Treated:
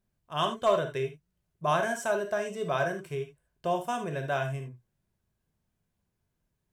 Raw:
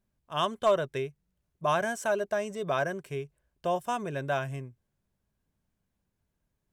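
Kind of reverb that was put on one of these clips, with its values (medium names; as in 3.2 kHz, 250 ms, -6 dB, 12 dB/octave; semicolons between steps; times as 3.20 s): gated-style reverb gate 100 ms flat, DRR 4.5 dB; trim -1 dB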